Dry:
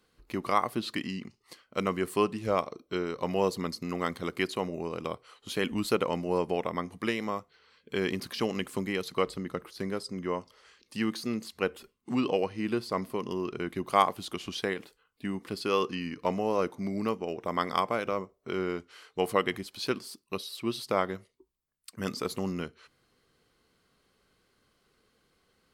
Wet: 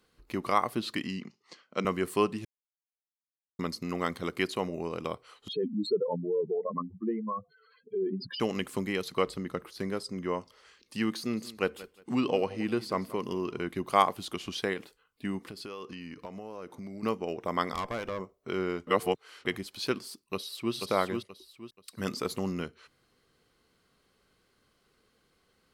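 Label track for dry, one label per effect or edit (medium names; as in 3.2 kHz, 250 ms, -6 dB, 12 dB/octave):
1.210000	1.850000	Chebyshev band-pass 160–6500 Hz, order 3
2.450000	3.590000	mute
5.480000	8.400000	spectral contrast enhancement exponent 3.9
11.190000	13.660000	feedback delay 179 ms, feedback 25%, level -18 dB
15.450000	17.030000	compression 5:1, threshold -39 dBFS
17.740000	18.200000	valve stage drive 28 dB, bias 0.4
18.870000	19.450000	reverse
20.330000	20.740000	echo throw 480 ms, feedback 30%, level -4 dB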